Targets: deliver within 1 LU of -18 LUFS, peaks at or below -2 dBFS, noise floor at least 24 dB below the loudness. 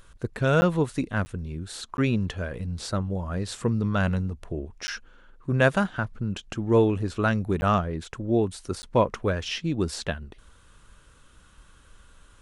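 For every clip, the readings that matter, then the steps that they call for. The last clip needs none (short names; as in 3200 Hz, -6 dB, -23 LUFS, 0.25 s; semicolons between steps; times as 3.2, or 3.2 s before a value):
dropouts 6; longest dropout 10 ms; loudness -26.5 LUFS; peak -5.5 dBFS; loudness target -18.0 LUFS
-> interpolate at 0.61/1.25/1.97/4.87/7.61/8.82, 10 ms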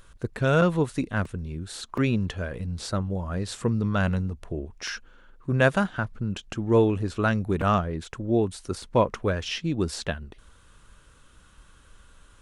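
dropouts 0; loudness -26.5 LUFS; peak -5.5 dBFS; loudness target -18.0 LUFS
-> gain +8.5 dB; limiter -2 dBFS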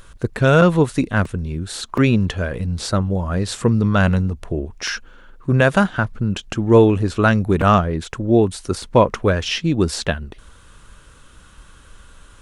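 loudness -18.5 LUFS; peak -2.0 dBFS; noise floor -47 dBFS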